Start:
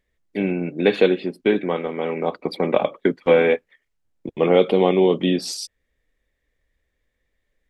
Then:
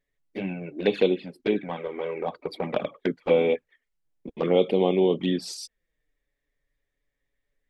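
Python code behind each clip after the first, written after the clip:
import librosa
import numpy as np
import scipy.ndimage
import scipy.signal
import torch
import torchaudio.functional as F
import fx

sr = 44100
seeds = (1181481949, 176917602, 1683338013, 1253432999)

y = fx.env_flanger(x, sr, rest_ms=7.1, full_db=-12.5)
y = y * 10.0 ** (-4.0 / 20.0)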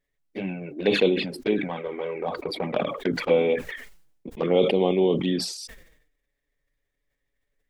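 y = fx.sustainer(x, sr, db_per_s=70.0)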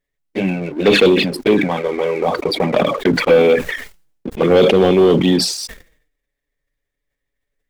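y = fx.leveller(x, sr, passes=2)
y = y * 10.0 ** (4.5 / 20.0)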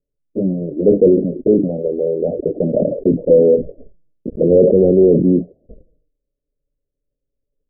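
y = scipy.signal.sosfilt(scipy.signal.butter(12, 620.0, 'lowpass', fs=sr, output='sos'), x)
y = y * 10.0 ** (1.0 / 20.0)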